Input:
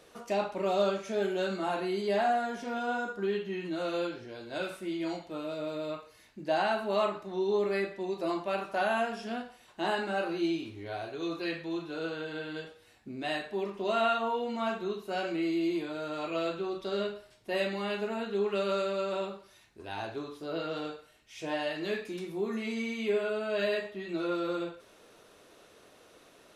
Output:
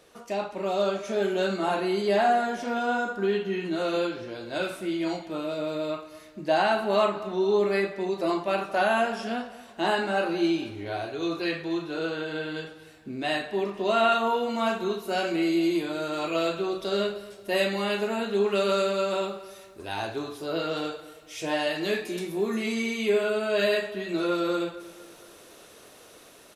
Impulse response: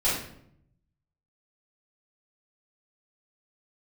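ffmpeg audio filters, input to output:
-filter_complex "[0:a]asetnsamples=n=441:p=0,asendcmd='14.12 highshelf g 10.5',highshelf=f=6500:g=2,asplit=2[s0][s1];[s1]adelay=230,lowpass=f=3500:p=1,volume=0.15,asplit=2[s2][s3];[s3]adelay=230,lowpass=f=3500:p=1,volume=0.46,asplit=2[s4][s5];[s5]adelay=230,lowpass=f=3500:p=1,volume=0.46,asplit=2[s6][s7];[s7]adelay=230,lowpass=f=3500:p=1,volume=0.46[s8];[s0][s2][s4][s6][s8]amix=inputs=5:normalize=0,dynaudnorm=f=160:g=13:m=1.88"

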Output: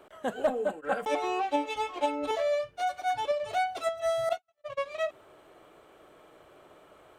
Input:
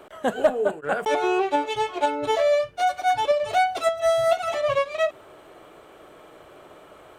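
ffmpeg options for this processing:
-filter_complex "[0:a]asettb=1/sr,asplit=3[s0][s1][s2];[s0]atrim=end=0.474[s3];[s1]atrim=start=0.47:end=2.31,asetpts=PTS-STARTPTS,afade=t=in:d=0.004:c=qsin,afade=t=out:st=1.836:d=0.004:c=qsin,aecho=1:1:3.8:0.96,atrim=end_sample=81144[s4];[s2]atrim=start=2.306[s5];[s3][s4]acrossfade=d=0.004:c1=hsin:c2=qsin[s6];[s6][s5]acrossfade=d=0.004:c1=qsin:c2=hsin,asettb=1/sr,asplit=3[s7][s8][s9];[s7]atrim=end=4.294[s10];[s8]atrim=start=4.29:end=4.8,asetpts=PTS-STARTPTS,afade=t=in:d=0.004:c=qsin,afade=t=out:st=0.506:d=0.004:c=qsin,agate=range=0.00158:threshold=0.1:ratio=16:detection=peak[s11];[s9]atrim=start=4.796[s12];[s10][s11]acrossfade=d=0.004:c1=hsin:c2=qsin[s13];[s13][s12]acrossfade=d=0.004:c1=qsin:c2=hsin,volume=0.398"

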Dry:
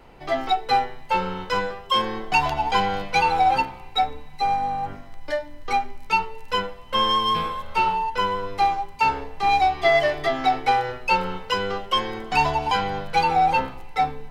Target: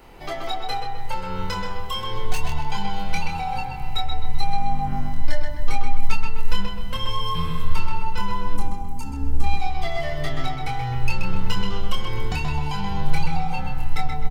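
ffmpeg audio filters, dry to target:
-filter_complex "[0:a]acompressor=threshold=0.0355:ratio=10,asettb=1/sr,asplit=3[s0][s1][s2];[s0]atrim=end=1.994[s3];[s1]atrim=start=1.99:end=2.4,asetpts=PTS-STARTPTS,afade=t=in:d=0.004:c=qsin,afade=t=out:st=0.406:d=0.004:c=qsin,aeval=exprs='0.0473*(abs(mod(val(0)/0.0473+3,4)-2)-1)':c=same[s4];[s2]atrim=start=2.396[s5];[s3][s4]acrossfade=d=0.004:c1=hsin:c2=qsin[s6];[s6][s5]acrossfade=d=0.004:c1=qsin:c2=hsin,asubboost=boost=11:cutoff=140,crystalizer=i=1.5:c=0,asettb=1/sr,asplit=3[s7][s8][s9];[s7]atrim=end=8.544[s10];[s8]atrim=start=8.54:end=9.44,asetpts=PTS-STARTPTS,afade=t=in:d=0.004:c=qsin,afade=t=out:st=0.896:d=0.004:c=qsin,equalizer=f=125:t=o:w=1:g=-4,equalizer=f=250:t=o:w=1:g=11,equalizer=f=500:t=o:w=1:g=-7,equalizer=f=1000:t=o:w=1:g=-5,equalizer=f=2000:t=o:w=1:g=-11,equalizer=f=4000:t=o:w=1:g=-12,equalizer=f=8000:t=o:w=1:g=4[s11];[s9]atrim=start=9.436[s12];[s10][s11]acrossfade=d=0.004:c1=hsin:c2=qsin[s13];[s13][s12]acrossfade=d=0.004:c1=qsin:c2=hsin,asplit=2[s14][s15];[s15]adelay=129,lowpass=f=3300:p=1,volume=0.668,asplit=2[s16][s17];[s17]adelay=129,lowpass=f=3300:p=1,volume=0.5,asplit=2[s18][s19];[s19]adelay=129,lowpass=f=3300:p=1,volume=0.5,asplit=2[s20][s21];[s21]adelay=129,lowpass=f=3300:p=1,volume=0.5,asplit=2[s22][s23];[s23]adelay=129,lowpass=f=3300:p=1,volume=0.5,asplit=2[s24][s25];[s25]adelay=129,lowpass=f=3300:p=1,volume=0.5,asplit=2[s26][s27];[s27]adelay=129,lowpass=f=3300:p=1,volume=0.5[s28];[s14][s16][s18][s20][s22][s24][s26][s28]amix=inputs=8:normalize=0,asettb=1/sr,asplit=3[s29][s30][s31];[s29]atrim=end=11.204[s32];[s30]atrim=start=11.2:end=11.76,asetpts=PTS-STARTPTS,afade=t=in:d=0.004:c=qsin,afade=t=out:st=0.556:d=0.004:c=qsin,aeval=exprs='0.282*(cos(1*acos(clip(val(0)/0.282,-1,1)))-cos(1*PI/2))+0.00794*(cos(7*acos(clip(val(0)/0.282,-1,1)))-cos(7*PI/2))':c=same[s33];[s31]atrim=start=11.756[s34];[s32][s33]acrossfade=d=0.004:c1=hsin:c2=qsin[s35];[s35][s34]acrossfade=d=0.004:c1=qsin:c2=hsin,asplit=2[s36][s37];[s37]adelay=25,volume=0.631[s38];[s36][s38]amix=inputs=2:normalize=0"

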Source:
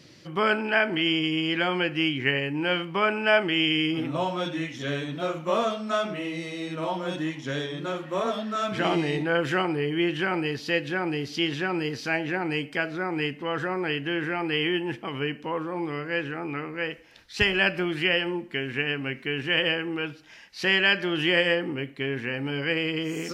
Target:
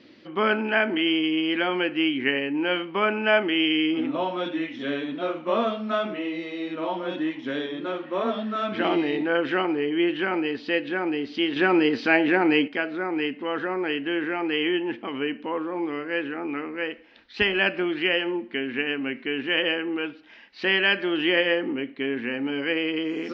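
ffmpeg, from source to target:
-filter_complex "[0:a]asettb=1/sr,asplit=3[s0][s1][s2];[s0]atrim=end=11.564[s3];[s1]atrim=start=11.56:end=12.68,asetpts=PTS-STARTPTS,afade=t=in:d=0.004:c=qsin,afade=t=out:st=1.116:d=0.004:c=qsin,acontrast=72[s4];[s2]atrim=start=12.676[s5];[s3][s4]acrossfade=d=0.004:c1=hsin:c2=qsin[s6];[s6][s5]acrossfade=d=0.004:c1=qsin:c2=hsin,lowpass=f=3900:w=0.5412,lowpass=f=3900:w=1.3066,lowshelf=f=190:t=q:w=3:g=-7"

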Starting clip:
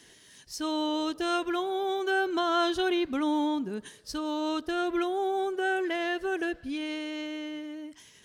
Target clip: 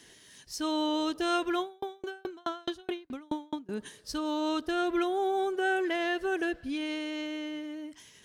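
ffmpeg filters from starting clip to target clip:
-filter_complex "[0:a]asettb=1/sr,asplit=3[s0][s1][s2];[s0]atrim=end=1.614[s3];[s1]atrim=start=1.61:end=3.69,asetpts=PTS-STARTPTS,afade=t=in:d=0.004:c=qsin,afade=t=out:st=2.076:d=0.004:c=qsin,aeval=exprs='val(0)*pow(10,-38*if(lt(mod(4.7*n/s,1),2*abs(4.7)/1000),1-mod(4.7*n/s,1)/(2*abs(4.7)/1000),(mod(4.7*n/s,1)-2*abs(4.7)/1000)/(1-2*abs(4.7)/1000))/20)':c=same[s4];[s2]atrim=start=3.686[s5];[s3][s4]acrossfade=d=0.004:c1=hsin:c2=qsin[s6];[s6][s5]acrossfade=d=0.004:c1=qsin:c2=hsin"

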